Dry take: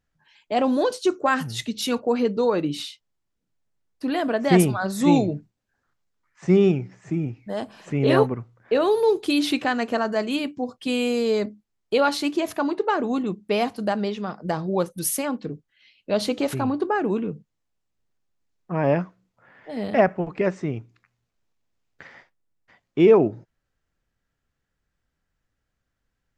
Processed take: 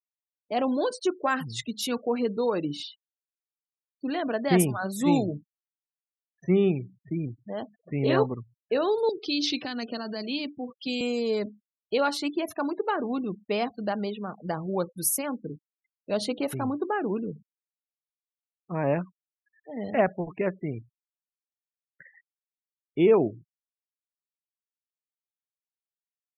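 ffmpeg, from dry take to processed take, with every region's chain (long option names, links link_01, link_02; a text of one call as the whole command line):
ffmpeg -i in.wav -filter_complex "[0:a]asettb=1/sr,asplit=3[link_01][link_02][link_03];[link_01]atrim=end=9.094[link_04];[link_02]atrim=start=9.09:end=11.01,asetpts=PTS-STARTPTS,afade=type=in:duration=0.004:curve=qsin,afade=type=out:start_time=1.916:duration=0.004:curve=qsin,acrossover=split=280|3000[link_05][link_06][link_07];[link_06]acompressor=threshold=-28dB:ratio=10:attack=3.2:release=140:knee=2.83:detection=peak[link_08];[link_05][link_08][link_07]amix=inputs=3:normalize=0,lowpass=frequency=5300:width_type=q:width=2.2[link_09];[link_03]atrim=start=11.006[link_10];[link_04][link_09]acrossfade=duration=0.004:curve1=hsin:curve2=qsin[link_11];[link_11][link_10]acrossfade=duration=0.004:curve1=qsin:curve2=hsin,afftfilt=real='re*gte(hypot(re,im),0.0178)':imag='im*gte(hypot(re,im),0.0178)':win_size=1024:overlap=0.75,highshelf=frequency=8000:gain=7.5,volume=-5dB" out.wav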